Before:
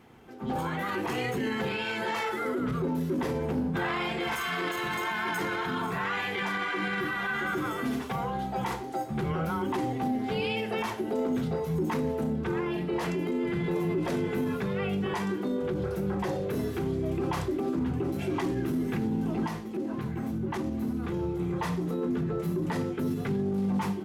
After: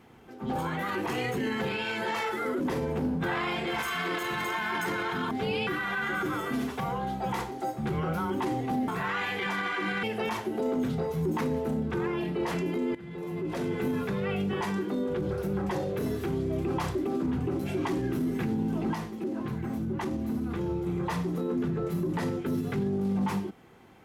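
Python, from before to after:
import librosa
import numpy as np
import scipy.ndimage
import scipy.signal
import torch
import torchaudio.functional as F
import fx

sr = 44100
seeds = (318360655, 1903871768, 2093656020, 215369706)

y = fx.edit(x, sr, fx.cut(start_s=2.6, length_s=0.53),
    fx.swap(start_s=5.84, length_s=1.15, other_s=10.2, other_length_s=0.36),
    fx.fade_in_from(start_s=13.48, length_s=0.89, floor_db=-17.5), tone=tone)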